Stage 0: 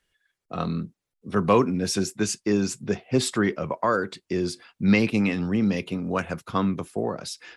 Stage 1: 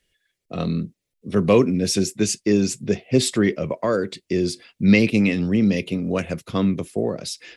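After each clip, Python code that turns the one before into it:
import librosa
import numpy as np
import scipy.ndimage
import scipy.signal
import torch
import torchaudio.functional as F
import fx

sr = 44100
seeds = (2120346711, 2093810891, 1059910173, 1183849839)

y = fx.band_shelf(x, sr, hz=1100.0, db=-9.5, octaves=1.3)
y = y * librosa.db_to_amplitude(4.5)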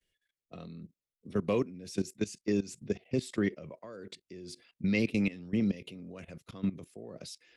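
y = fx.level_steps(x, sr, step_db=18)
y = y * librosa.db_to_amplitude(-9.0)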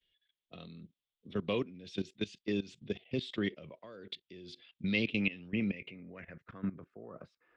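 y = fx.filter_sweep_lowpass(x, sr, from_hz=3400.0, to_hz=1200.0, start_s=4.98, end_s=7.21, q=5.2)
y = y * librosa.db_to_amplitude(-4.5)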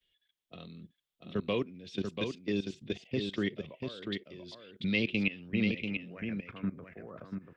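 y = x + 10.0 ** (-5.5 / 20.0) * np.pad(x, (int(689 * sr / 1000.0), 0))[:len(x)]
y = y * librosa.db_to_amplitude(1.5)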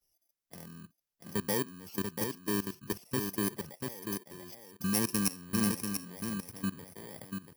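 y = fx.bit_reversed(x, sr, seeds[0], block=32)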